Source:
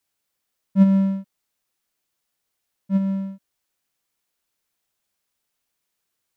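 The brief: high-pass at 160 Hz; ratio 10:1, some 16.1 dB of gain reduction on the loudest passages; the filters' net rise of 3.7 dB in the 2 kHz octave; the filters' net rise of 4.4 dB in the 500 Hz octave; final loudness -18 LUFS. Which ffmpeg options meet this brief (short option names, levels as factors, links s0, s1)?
-af "highpass=160,equalizer=f=500:t=o:g=5,equalizer=f=2000:t=o:g=4,acompressor=threshold=0.0398:ratio=10,volume=5.96"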